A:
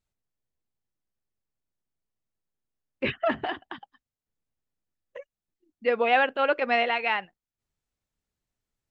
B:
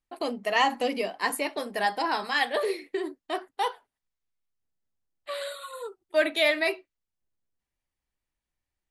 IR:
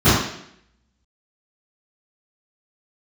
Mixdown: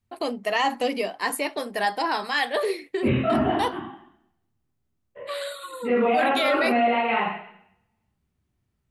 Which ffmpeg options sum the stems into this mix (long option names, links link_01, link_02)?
-filter_complex "[0:a]lowpass=frequency=3400:width=0.5412,lowpass=frequency=3400:width=1.3066,equalizer=frequency=1700:width=7.7:gain=-7.5,volume=-10dB,asplit=2[link_01][link_02];[link_02]volume=-10.5dB[link_03];[1:a]volume=2.5dB[link_04];[2:a]atrim=start_sample=2205[link_05];[link_03][link_05]afir=irnorm=-1:irlink=0[link_06];[link_01][link_04][link_06]amix=inputs=3:normalize=0,alimiter=limit=-13.5dB:level=0:latency=1:release=14"